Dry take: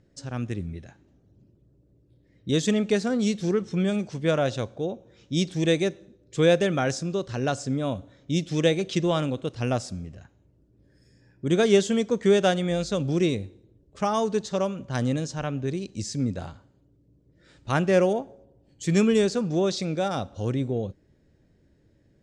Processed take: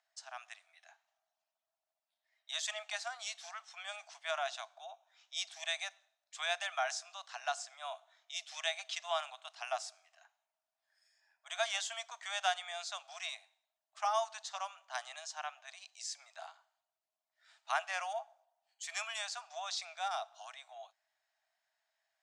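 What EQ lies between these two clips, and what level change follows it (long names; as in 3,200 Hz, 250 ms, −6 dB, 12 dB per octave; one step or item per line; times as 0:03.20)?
Chebyshev high-pass filter 650 Hz, order 8
−5.5 dB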